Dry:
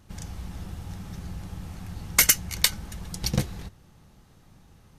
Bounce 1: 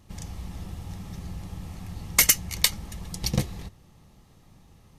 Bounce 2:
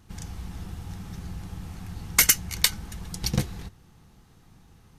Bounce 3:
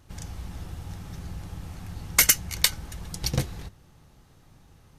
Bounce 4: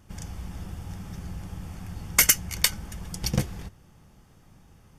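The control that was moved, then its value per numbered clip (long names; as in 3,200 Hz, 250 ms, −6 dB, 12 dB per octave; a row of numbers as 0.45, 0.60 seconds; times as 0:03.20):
notch filter, centre frequency: 1,500, 580, 200, 4,000 Hertz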